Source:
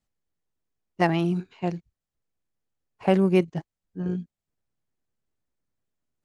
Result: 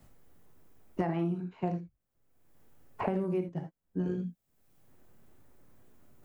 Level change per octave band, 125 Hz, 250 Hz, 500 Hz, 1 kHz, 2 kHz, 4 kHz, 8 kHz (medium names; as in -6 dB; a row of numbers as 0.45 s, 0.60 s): -7.0 dB, -8.0 dB, -9.0 dB, -8.5 dB, -14.0 dB, under -15 dB, no reading